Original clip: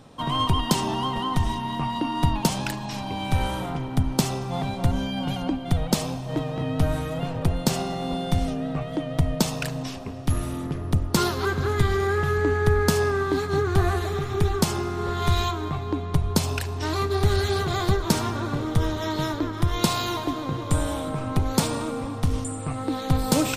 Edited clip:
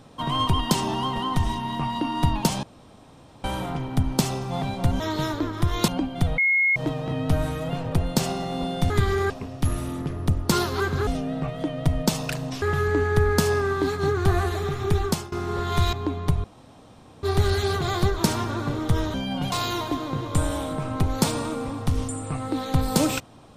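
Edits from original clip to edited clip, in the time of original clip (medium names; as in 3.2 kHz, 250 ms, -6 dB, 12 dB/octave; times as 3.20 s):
2.63–3.44 s: room tone
5.00–5.38 s: swap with 19.00–19.88 s
5.88–6.26 s: bleep 2.16 kHz -17 dBFS
8.40–9.95 s: swap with 11.72–12.12 s
14.55–14.82 s: fade out, to -21.5 dB
15.43–15.79 s: delete
16.30–17.09 s: room tone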